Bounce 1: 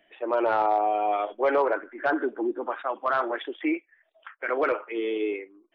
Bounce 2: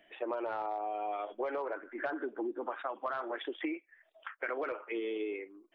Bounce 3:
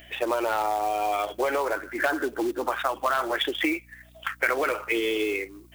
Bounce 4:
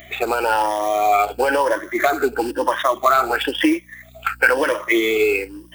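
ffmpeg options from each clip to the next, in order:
-af "acompressor=threshold=0.0224:ratio=10"
-af "aeval=exprs='val(0)+0.000794*(sin(2*PI*60*n/s)+sin(2*PI*2*60*n/s)/2+sin(2*PI*3*60*n/s)/3+sin(2*PI*4*60*n/s)/4+sin(2*PI*5*60*n/s)/5)':c=same,crystalizer=i=6:c=0,acrusher=bits=4:mode=log:mix=0:aa=0.000001,volume=2.66"
-af "afftfilt=real='re*pow(10,14/40*sin(2*PI*(1.2*log(max(b,1)*sr/1024/100)/log(2)-(1)*(pts-256)/sr)))':imag='im*pow(10,14/40*sin(2*PI*(1.2*log(max(b,1)*sr/1024/100)/log(2)-(1)*(pts-256)/sr)))':win_size=1024:overlap=0.75,volume=1.88"

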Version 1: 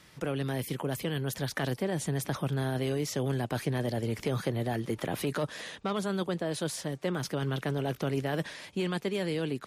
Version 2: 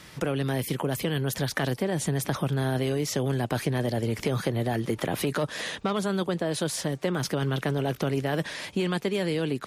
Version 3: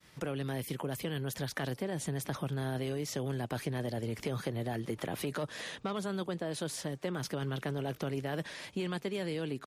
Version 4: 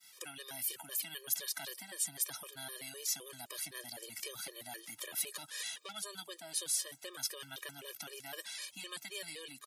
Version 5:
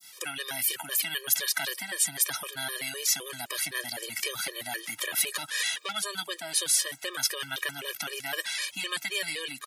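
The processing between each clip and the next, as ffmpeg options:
-af "acompressor=threshold=0.0158:ratio=2,volume=2.82"
-filter_complex "[0:a]agate=range=0.0224:threshold=0.00631:ratio=3:detection=peak,asplit=2[s0][s1];[s1]adelay=1458,volume=0.0355,highshelf=f=4000:g=-32.8[s2];[s0][s2]amix=inputs=2:normalize=0,volume=0.376"
-af "aderivative,afftfilt=real='re*gt(sin(2*PI*3.9*pts/sr)*(1-2*mod(floor(b*sr/1024/320),2)),0)':imag='im*gt(sin(2*PI*3.9*pts/sr)*(1-2*mod(floor(b*sr/1024/320),2)),0)':win_size=1024:overlap=0.75,volume=3.55"
-af "adynamicequalizer=threshold=0.00126:dfrequency=1900:dqfactor=0.84:tfrequency=1900:tqfactor=0.84:attack=5:release=100:ratio=0.375:range=3.5:mode=boostabove:tftype=bell,volume=2.82"

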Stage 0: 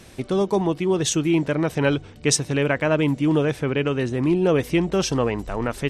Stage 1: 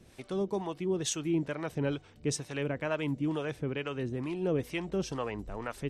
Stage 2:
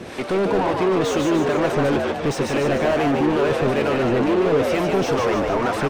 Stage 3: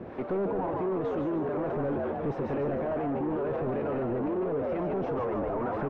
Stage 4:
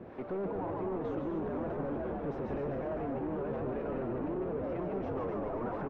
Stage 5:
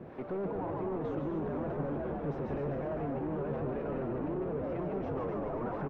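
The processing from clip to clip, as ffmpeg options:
-filter_complex "[0:a]acrossover=split=550[s0][s1];[s0]aeval=exprs='val(0)*(1-0.7/2+0.7/2*cos(2*PI*2.2*n/s))':c=same[s2];[s1]aeval=exprs='val(0)*(1-0.7/2-0.7/2*cos(2*PI*2.2*n/s))':c=same[s3];[s2][s3]amix=inputs=2:normalize=0,volume=0.376"
-filter_complex "[0:a]asplit=2[s0][s1];[s1]highpass=f=720:p=1,volume=50.1,asoftclip=type=tanh:threshold=0.119[s2];[s0][s2]amix=inputs=2:normalize=0,lowpass=f=1100:p=1,volume=0.501,asplit=9[s3][s4][s5][s6][s7][s8][s9][s10][s11];[s4]adelay=149,afreqshift=86,volume=0.631[s12];[s5]adelay=298,afreqshift=172,volume=0.359[s13];[s6]adelay=447,afreqshift=258,volume=0.204[s14];[s7]adelay=596,afreqshift=344,volume=0.117[s15];[s8]adelay=745,afreqshift=430,volume=0.0668[s16];[s9]adelay=894,afreqshift=516,volume=0.038[s17];[s10]adelay=1043,afreqshift=602,volume=0.0216[s18];[s11]adelay=1192,afreqshift=688,volume=0.0123[s19];[s3][s12][s13][s14][s15][s16][s17][s18][s19]amix=inputs=9:normalize=0,volume=1.88"
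-af "lowpass=1100,alimiter=limit=0.119:level=0:latency=1:release=12,volume=0.531"
-filter_complex "[0:a]asplit=8[s0][s1][s2][s3][s4][s5][s6][s7];[s1]adelay=251,afreqshift=-86,volume=0.447[s8];[s2]adelay=502,afreqshift=-172,volume=0.251[s9];[s3]adelay=753,afreqshift=-258,volume=0.14[s10];[s4]adelay=1004,afreqshift=-344,volume=0.0785[s11];[s5]adelay=1255,afreqshift=-430,volume=0.0442[s12];[s6]adelay=1506,afreqshift=-516,volume=0.0245[s13];[s7]adelay=1757,afreqshift=-602,volume=0.0138[s14];[s0][s8][s9][s10][s11][s12][s13][s14]amix=inputs=8:normalize=0,volume=0.473"
-af "equalizer=f=150:t=o:w=0.24:g=7"

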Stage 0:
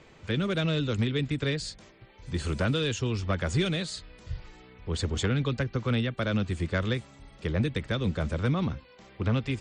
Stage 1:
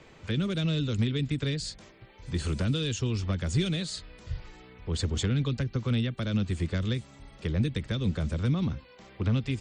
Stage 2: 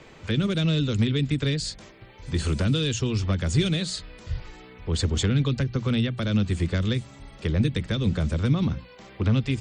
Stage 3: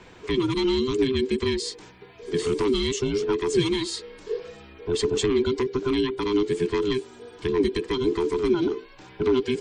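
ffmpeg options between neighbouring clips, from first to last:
-filter_complex "[0:a]acrossover=split=330|3000[s0][s1][s2];[s1]acompressor=threshold=0.01:ratio=6[s3];[s0][s3][s2]amix=inputs=3:normalize=0,volume=1.12"
-af "bandreject=f=60:t=h:w=6,bandreject=f=120:t=h:w=6,bandreject=f=180:t=h:w=6,volume=1.78"
-af "afftfilt=real='real(if(between(b,1,1008),(2*floor((b-1)/24)+1)*24-b,b),0)':imag='imag(if(between(b,1,1008),(2*floor((b-1)/24)+1)*24-b,b),0)*if(between(b,1,1008),-1,1)':win_size=2048:overlap=0.75"

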